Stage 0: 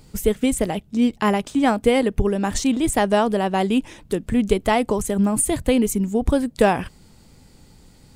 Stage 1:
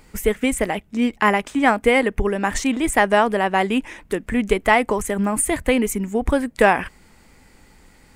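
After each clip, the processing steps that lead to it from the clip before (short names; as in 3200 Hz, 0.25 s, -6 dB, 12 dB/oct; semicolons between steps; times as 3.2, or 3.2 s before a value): graphic EQ 125/1000/2000/4000 Hz -9/+3/+10/-5 dB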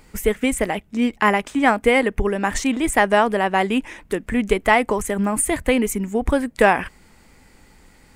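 nothing audible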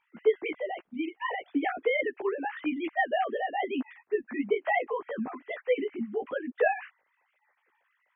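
sine-wave speech; chorus voices 2, 1 Hz, delay 15 ms, depth 3.4 ms; gain -7.5 dB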